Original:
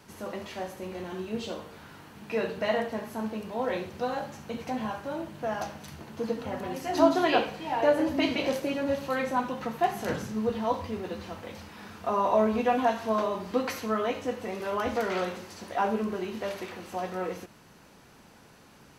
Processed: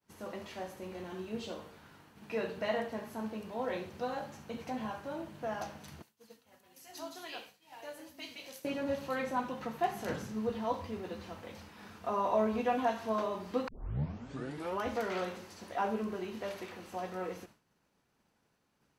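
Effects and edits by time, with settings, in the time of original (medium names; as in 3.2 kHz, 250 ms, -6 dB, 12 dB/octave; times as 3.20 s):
6.02–8.65 s: pre-emphasis filter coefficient 0.9
13.68 s: tape start 1.13 s
whole clip: expander -44 dBFS; trim -6 dB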